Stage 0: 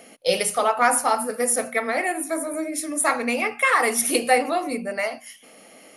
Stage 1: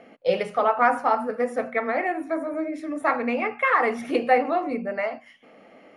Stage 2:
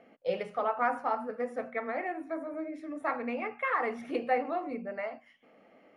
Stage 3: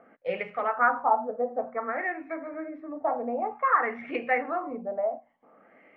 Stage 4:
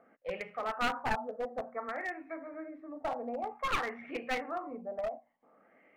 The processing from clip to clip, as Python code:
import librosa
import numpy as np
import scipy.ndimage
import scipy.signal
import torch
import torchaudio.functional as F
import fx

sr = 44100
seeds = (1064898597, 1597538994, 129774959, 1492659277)

y1 = scipy.signal.sosfilt(scipy.signal.butter(2, 1900.0, 'lowpass', fs=sr, output='sos'), x)
y2 = fx.high_shelf(y1, sr, hz=5100.0, db=-7.5)
y2 = y2 * librosa.db_to_amplitude(-9.0)
y3 = fx.filter_lfo_lowpass(y2, sr, shape='sine', hz=0.54, low_hz=690.0, high_hz=2300.0, q=3.5)
y4 = np.minimum(y3, 2.0 * 10.0 ** (-23.0 / 20.0) - y3)
y4 = y4 * librosa.db_to_amplitude(-7.0)